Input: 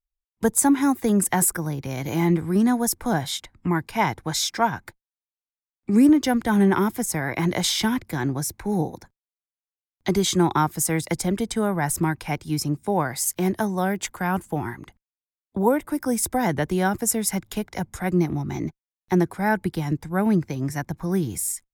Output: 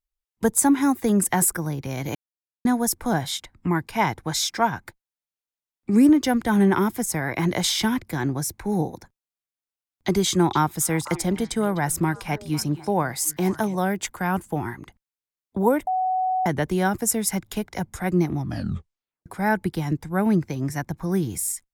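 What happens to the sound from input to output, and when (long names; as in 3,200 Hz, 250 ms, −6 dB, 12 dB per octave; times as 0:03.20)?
0:02.15–0:02.65: silence
0:10.28–0:13.77: echo through a band-pass that steps 251 ms, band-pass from 3,200 Hz, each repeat −1.4 octaves, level −11 dB
0:15.87–0:16.46: beep over 746 Hz −20 dBFS
0:18.38: tape stop 0.88 s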